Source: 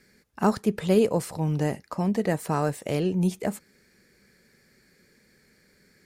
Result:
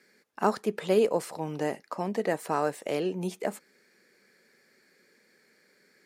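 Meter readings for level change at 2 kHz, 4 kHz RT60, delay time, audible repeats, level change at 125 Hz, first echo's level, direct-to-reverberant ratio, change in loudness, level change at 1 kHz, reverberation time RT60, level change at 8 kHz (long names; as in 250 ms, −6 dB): −0.5 dB, no reverb audible, no echo audible, no echo audible, −12.0 dB, no echo audible, no reverb audible, −3.5 dB, −0.5 dB, no reverb audible, −4.0 dB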